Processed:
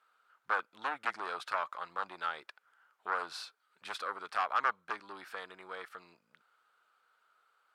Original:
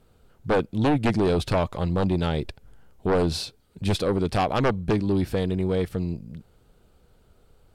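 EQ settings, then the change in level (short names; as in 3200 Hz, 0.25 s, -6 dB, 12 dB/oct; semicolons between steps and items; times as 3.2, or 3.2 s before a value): dynamic EQ 2900 Hz, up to -4 dB, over -43 dBFS, Q 0.9; resonant high-pass 1300 Hz, resonance Q 3.3; high shelf 4700 Hz -10.5 dB; -6.0 dB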